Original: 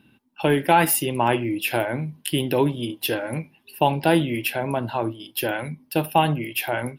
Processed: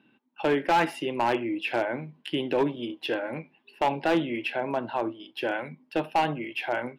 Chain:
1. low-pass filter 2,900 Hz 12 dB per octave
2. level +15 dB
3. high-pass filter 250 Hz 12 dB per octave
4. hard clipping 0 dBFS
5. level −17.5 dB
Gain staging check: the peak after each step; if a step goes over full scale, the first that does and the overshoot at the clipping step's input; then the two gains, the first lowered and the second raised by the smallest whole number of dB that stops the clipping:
−4.0, +11.0, +10.0, 0.0, −17.5 dBFS
step 2, 10.0 dB
step 2 +5 dB, step 5 −7.5 dB

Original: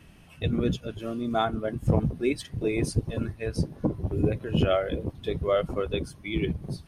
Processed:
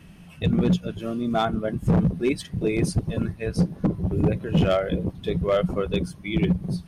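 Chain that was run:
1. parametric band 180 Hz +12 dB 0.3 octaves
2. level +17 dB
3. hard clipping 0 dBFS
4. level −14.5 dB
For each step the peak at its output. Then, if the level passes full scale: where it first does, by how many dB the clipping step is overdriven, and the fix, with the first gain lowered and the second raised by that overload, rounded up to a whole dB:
−7.0, +10.0, 0.0, −14.5 dBFS
step 2, 10.0 dB
step 2 +7 dB, step 4 −4.5 dB

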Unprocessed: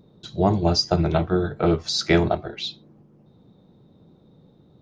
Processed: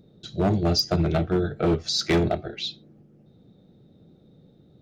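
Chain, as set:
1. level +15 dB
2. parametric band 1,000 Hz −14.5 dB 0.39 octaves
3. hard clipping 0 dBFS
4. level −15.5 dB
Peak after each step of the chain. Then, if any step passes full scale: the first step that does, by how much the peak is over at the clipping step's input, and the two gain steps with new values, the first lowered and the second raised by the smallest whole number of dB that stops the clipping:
+10.5, +9.5, 0.0, −15.5 dBFS
step 1, 9.5 dB
step 1 +5 dB, step 4 −5.5 dB

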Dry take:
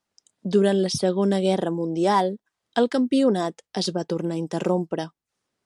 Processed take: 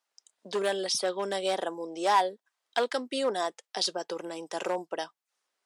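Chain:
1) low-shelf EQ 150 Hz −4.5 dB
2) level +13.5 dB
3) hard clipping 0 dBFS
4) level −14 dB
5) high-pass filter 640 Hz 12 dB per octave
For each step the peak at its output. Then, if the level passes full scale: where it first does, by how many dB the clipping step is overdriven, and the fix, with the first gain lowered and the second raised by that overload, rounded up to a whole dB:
−7.0, +6.5, 0.0, −14.0, −11.5 dBFS
step 2, 6.5 dB
step 2 +6.5 dB, step 4 −7 dB

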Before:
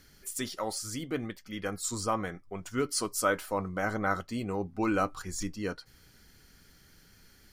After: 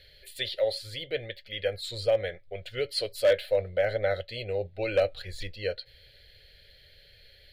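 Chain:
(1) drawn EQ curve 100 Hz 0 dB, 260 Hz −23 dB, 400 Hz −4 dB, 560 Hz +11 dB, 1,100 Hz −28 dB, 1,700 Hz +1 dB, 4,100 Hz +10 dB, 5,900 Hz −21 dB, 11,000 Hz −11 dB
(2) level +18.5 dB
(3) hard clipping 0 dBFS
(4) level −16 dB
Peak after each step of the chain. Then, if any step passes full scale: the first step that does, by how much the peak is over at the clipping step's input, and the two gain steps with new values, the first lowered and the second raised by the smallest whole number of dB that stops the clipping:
−13.0, +5.5, 0.0, −16.0 dBFS
step 2, 5.5 dB
step 2 +12.5 dB, step 4 −10 dB

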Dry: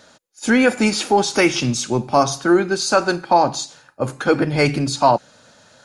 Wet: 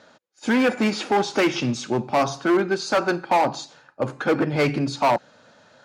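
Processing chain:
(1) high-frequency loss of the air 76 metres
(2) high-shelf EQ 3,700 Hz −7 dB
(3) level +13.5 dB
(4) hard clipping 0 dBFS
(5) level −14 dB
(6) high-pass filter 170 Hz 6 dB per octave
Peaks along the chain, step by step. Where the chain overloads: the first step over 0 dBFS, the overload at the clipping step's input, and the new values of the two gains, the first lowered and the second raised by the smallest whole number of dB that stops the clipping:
−3.0, −3.5, +10.0, 0.0, −14.0, −10.5 dBFS
step 3, 10.0 dB
step 3 +3.5 dB, step 5 −4 dB

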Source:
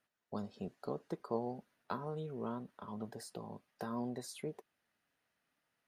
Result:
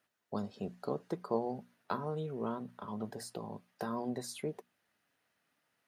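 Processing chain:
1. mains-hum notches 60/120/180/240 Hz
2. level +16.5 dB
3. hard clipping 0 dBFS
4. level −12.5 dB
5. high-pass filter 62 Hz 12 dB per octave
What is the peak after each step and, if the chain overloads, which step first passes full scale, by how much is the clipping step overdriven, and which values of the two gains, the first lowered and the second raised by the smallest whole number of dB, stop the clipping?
−21.5, −5.0, −5.0, −17.5, −18.0 dBFS
no step passes full scale

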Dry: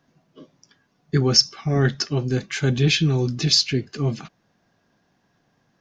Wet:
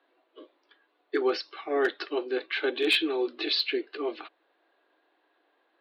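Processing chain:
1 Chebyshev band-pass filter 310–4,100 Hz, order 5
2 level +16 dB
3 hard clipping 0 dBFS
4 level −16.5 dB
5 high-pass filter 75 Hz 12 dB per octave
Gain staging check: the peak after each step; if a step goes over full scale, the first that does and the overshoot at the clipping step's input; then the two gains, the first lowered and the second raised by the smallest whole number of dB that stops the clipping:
−9.0, +7.0, 0.0, −16.5, −15.5 dBFS
step 2, 7.0 dB
step 2 +9 dB, step 4 −9.5 dB

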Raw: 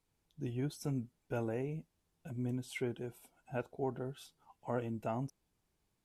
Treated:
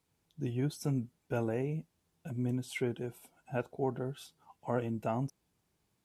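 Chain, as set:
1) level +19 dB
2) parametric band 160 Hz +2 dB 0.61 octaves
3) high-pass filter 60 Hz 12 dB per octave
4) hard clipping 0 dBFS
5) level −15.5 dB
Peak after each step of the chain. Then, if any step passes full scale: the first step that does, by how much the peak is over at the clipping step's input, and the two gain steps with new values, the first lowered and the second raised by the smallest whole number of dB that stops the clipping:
−5.0, −4.5, −4.0, −4.0, −19.5 dBFS
no step passes full scale

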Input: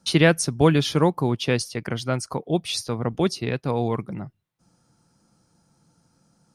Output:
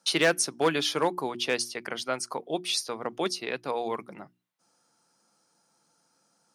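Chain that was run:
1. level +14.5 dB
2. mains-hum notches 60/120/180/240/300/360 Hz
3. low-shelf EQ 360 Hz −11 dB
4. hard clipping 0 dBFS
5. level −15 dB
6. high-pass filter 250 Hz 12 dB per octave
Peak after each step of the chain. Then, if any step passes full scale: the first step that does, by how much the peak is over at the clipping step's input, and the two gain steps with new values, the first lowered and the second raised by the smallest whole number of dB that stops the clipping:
+10.0, +10.0, +9.0, 0.0, −15.0, −9.5 dBFS
step 1, 9.0 dB
step 1 +5.5 dB, step 5 −6 dB

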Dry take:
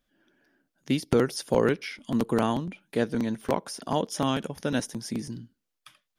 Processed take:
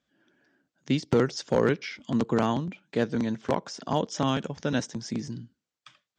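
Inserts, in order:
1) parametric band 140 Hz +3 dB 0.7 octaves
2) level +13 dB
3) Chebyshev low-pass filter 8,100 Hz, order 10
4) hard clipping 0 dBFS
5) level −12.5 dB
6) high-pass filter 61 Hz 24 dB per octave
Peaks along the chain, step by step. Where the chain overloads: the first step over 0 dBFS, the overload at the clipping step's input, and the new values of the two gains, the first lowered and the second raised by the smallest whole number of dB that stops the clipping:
−7.5, +5.5, +5.0, 0.0, −12.5, −10.5 dBFS
step 2, 5.0 dB
step 2 +8 dB, step 5 −7.5 dB

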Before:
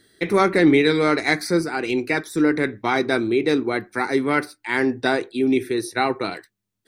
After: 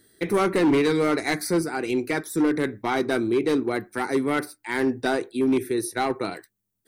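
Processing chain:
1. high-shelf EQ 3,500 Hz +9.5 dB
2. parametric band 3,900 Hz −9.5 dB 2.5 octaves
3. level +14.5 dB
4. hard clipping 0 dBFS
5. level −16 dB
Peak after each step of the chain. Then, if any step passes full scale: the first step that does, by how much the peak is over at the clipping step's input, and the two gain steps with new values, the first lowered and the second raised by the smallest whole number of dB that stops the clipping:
−3.5, −6.5, +8.0, 0.0, −16.0 dBFS
step 3, 8.0 dB
step 3 +6.5 dB, step 5 −8 dB

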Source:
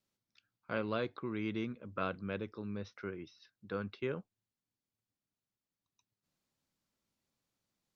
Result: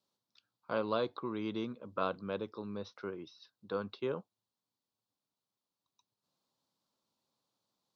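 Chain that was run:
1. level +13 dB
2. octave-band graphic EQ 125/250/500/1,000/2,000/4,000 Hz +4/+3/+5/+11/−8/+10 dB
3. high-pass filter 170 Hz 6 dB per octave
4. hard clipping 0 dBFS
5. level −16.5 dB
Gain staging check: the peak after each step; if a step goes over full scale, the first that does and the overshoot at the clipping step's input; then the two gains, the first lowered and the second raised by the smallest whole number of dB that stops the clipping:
−6.5, −2.5, −2.0, −2.0, −18.5 dBFS
no step passes full scale

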